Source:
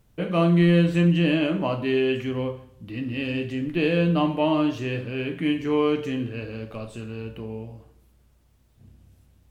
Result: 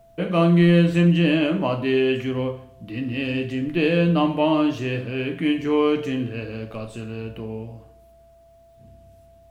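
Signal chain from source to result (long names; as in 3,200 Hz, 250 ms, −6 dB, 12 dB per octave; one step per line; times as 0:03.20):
steady tone 670 Hz −53 dBFS
mains-hum notches 50/100/150 Hz
level +2.5 dB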